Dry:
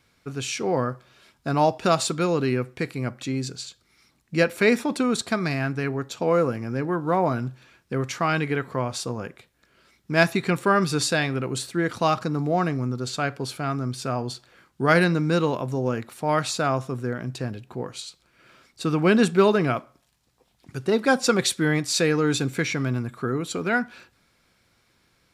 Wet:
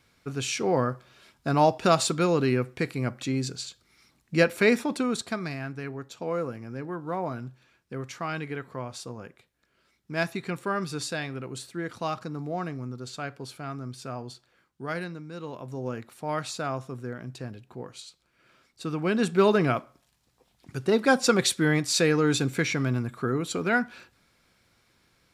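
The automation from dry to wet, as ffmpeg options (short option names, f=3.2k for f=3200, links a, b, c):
-af "volume=17.5dB,afade=t=out:st=4.4:d=1.19:silence=0.375837,afade=t=out:st=14.17:d=1.16:silence=0.316228,afade=t=in:st=15.33:d=0.54:silence=0.266073,afade=t=in:st=19.15:d=0.41:silence=0.473151"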